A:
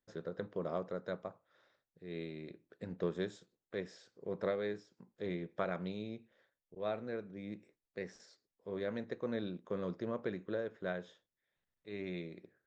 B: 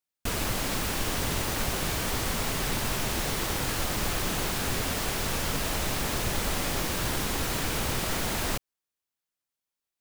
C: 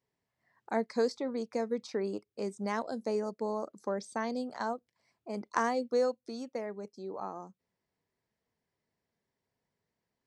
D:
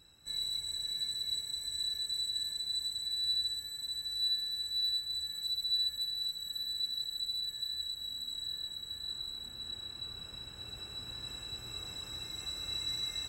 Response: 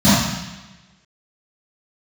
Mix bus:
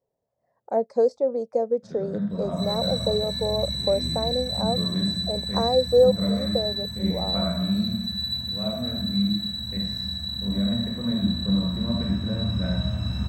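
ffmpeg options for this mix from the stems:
-filter_complex "[0:a]adelay=1750,volume=-3.5dB,asplit=2[link_01][link_02];[link_02]volume=-21.5dB[link_03];[2:a]firequalizer=gain_entry='entry(350,0);entry(540,15);entry(990,-3);entry(2100,-15);entry(5600,-7)':delay=0.05:min_phase=1,volume=0.5dB[link_04];[3:a]equalizer=frequency=85:width=1.5:gain=3.5,adelay=2300,volume=-6dB,asplit=2[link_05][link_06];[link_06]volume=-8.5dB[link_07];[4:a]atrim=start_sample=2205[link_08];[link_03][link_07]amix=inputs=2:normalize=0[link_09];[link_09][link_08]afir=irnorm=-1:irlink=0[link_10];[link_01][link_04][link_05][link_10]amix=inputs=4:normalize=0,lowshelf=frequency=70:gain=6"

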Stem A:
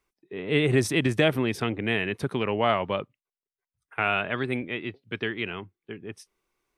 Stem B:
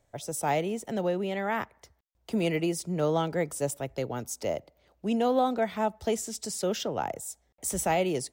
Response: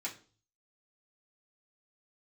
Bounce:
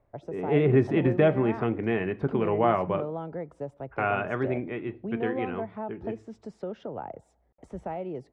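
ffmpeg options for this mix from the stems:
-filter_complex "[0:a]volume=0dB,asplit=2[link_01][link_02];[link_02]volume=-7.5dB[link_03];[1:a]acompressor=threshold=-36dB:ratio=2.5,volume=1.5dB[link_04];[2:a]atrim=start_sample=2205[link_05];[link_03][link_05]afir=irnorm=-1:irlink=0[link_06];[link_01][link_04][link_06]amix=inputs=3:normalize=0,lowpass=1200"

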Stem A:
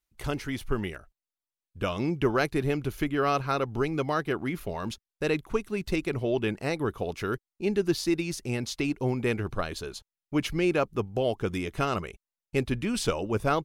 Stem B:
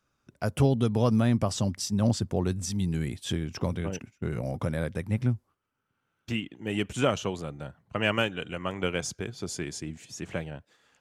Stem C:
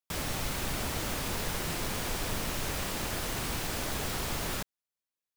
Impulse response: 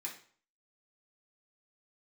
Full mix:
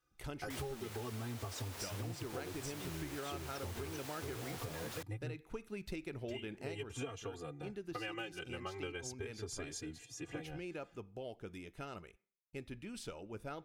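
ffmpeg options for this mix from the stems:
-filter_complex "[0:a]bandreject=frequency=1100:width=9.1,volume=-10.5dB,afade=type=out:start_time=6.73:duration=0.23:silence=0.421697,asplit=2[link_01][link_02];[link_02]volume=-13.5dB[link_03];[1:a]aecho=1:1:2.5:0.88,asplit=2[link_04][link_05];[link_05]adelay=3.6,afreqshift=0.38[link_06];[link_04][link_06]amix=inputs=2:normalize=1,volume=-6dB[link_07];[2:a]highpass=340,adelay=400,volume=-7.5dB[link_08];[3:a]atrim=start_sample=2205[link_09];[link_03][link_09]afir=irnorm=-1:irlink=0[link_10];[link_01][link_07][link_08][link_10]amix=inputs=4:normalize=0,acompressor=threshold=-39dB:ratio=10"

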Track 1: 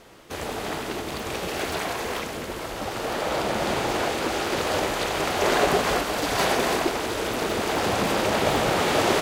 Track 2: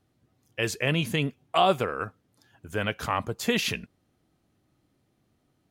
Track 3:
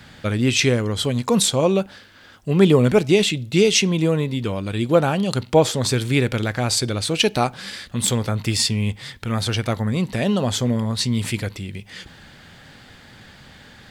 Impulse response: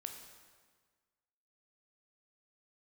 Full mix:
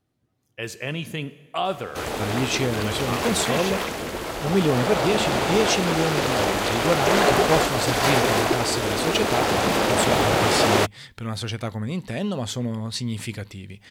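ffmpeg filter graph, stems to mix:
-filter_complex "[0:a]adelay=1650,volume=2.5dB[link_01];[1:a]volume=-7dB,asplit=2[link_02][link_03];[link_03]volume=-3dB[link_04];[2:a]adelay=1950,volume=-6.5dB[link_05];[3:a]atrim=start_sample=2205[link_06];[link_04][link_06]afir=irnorm=-1:irlink=0[link_07];[link_01][link_02][link_05][link_07]amix=inputs=4:normalize=0"

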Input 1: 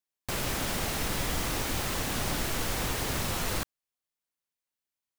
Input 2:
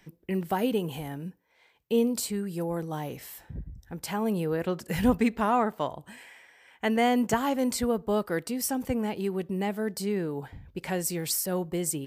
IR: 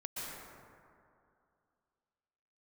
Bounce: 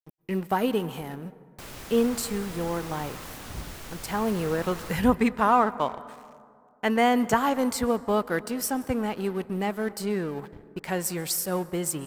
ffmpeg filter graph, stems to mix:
-filter_complex "[0:a]adelay=1300,volume=-10.5dB[link_01];[1:a]aeval=exprs='sgn(val(0))*max(abs(val(0))-0.00531,0)':channel_layout=same,volume=1dB,asplit=2[link_02][link_03];[link_03]volume=-17.5dB[link_04];[2:a]atrim=start_sample=2205[link_05];[link_04][link_05]afir=irnorm=-1:irlink=0[link_06];[link_01][link_02][link_06]amix=inputs=3:normalize=0,adynamicequalizer=threshold=0.00794:dfrequency=1200:dqfactor=1.3:tfrequency=1200:tqfactor=1.3:attack=5:release=100:ratio=0.375:range=3:mode=boostabove:tftype=bell"

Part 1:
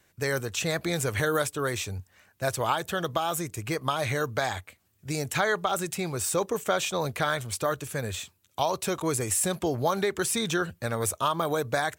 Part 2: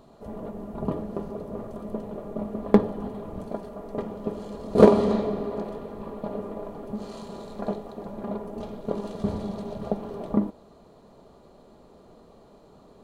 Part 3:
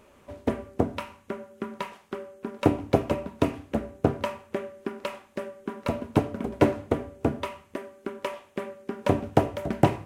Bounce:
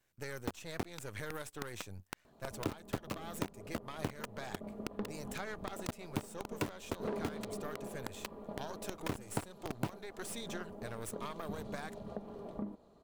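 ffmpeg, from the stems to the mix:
ffmpeg -i stem1.wav -i stem2.wav -i stem3.wav -filter_complex "[0:a]aeval=exprs='if(lt(val(0),0),0.251*val(0),val(0))':channel_layout=same,volume=-10.5dB[link_01];[1:a]asoftclip=type=tanh:threshold=-12.5dB,adelay=2250,volume=-11dB[link_02];[2:a]aecho=1:1:0.8:0.45,aeval=exprs='val(0)*gte(abs(val(0)),0.1)':channel_layout=same,volume=-3dB[link_03];[link_01][link_02][link_03]amix=inputs=3:normalize=0,acompressor=threshold=-38dB:ratio=3" out.wav

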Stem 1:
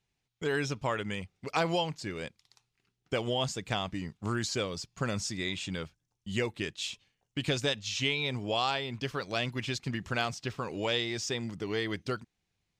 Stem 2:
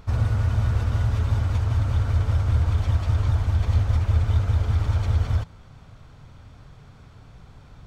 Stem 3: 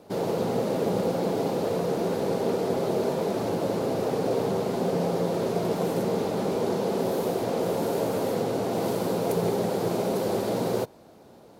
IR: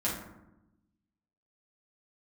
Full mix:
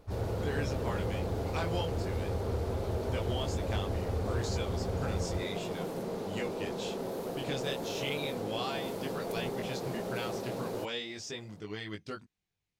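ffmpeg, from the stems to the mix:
-filter_complex "[0:a]flanger=delay=19:depth=4.3:speed=0.34,volume=-4dB[link_01];[1:a]volume=-14.5dB[link_02];[2:a]aeval=exprs='clip(val(0),-1,0.0708)':channel_layout=same,volume=-10dB[link_03];[link_01][link_02][link_03]amix=inputs=3:normalize=0,volume=24dB,asoftclip=hard,volume=-24dB"

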